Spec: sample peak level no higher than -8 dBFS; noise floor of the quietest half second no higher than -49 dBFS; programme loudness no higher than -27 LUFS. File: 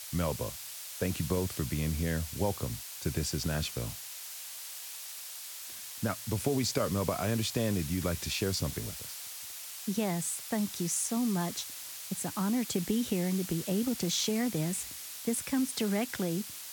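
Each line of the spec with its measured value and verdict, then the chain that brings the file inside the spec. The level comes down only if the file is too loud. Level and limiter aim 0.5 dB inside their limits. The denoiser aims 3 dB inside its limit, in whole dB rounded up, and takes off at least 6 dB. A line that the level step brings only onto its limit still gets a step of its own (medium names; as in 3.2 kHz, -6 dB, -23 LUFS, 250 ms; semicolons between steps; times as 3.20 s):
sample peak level -14.5 dBFS: pass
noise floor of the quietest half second -44 dBFS: fail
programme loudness -33.0 LUFS: pass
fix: noise reduction 8 dB, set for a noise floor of -44 dBFS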